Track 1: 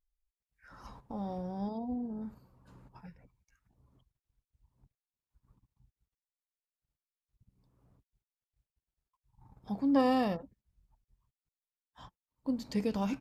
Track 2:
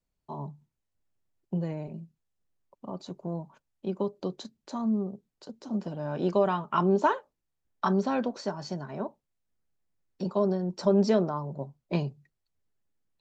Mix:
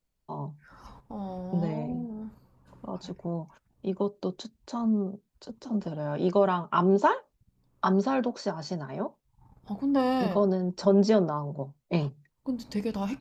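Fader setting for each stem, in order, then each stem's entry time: +1.5, +1.5 decibels; 0.00, 0.00 seconds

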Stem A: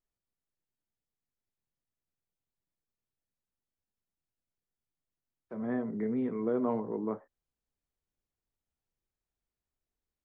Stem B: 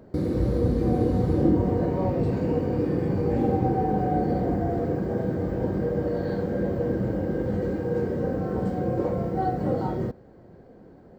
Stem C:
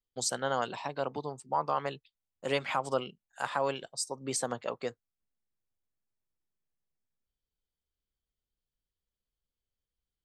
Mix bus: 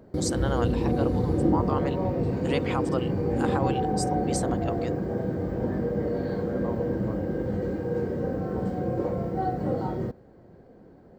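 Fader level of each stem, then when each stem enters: −3.5, −2.0, −0.5 decibels; 0.00, 0.00, 0.00 seconds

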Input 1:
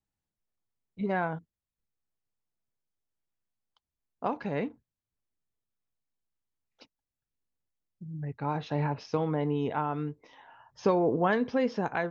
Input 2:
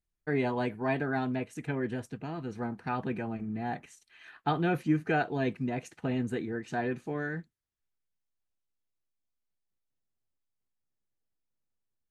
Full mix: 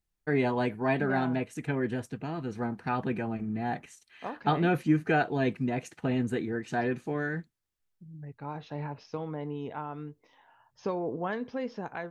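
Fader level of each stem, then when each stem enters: −7.0, +2.5 decibels; 0.00, 0.00 seconds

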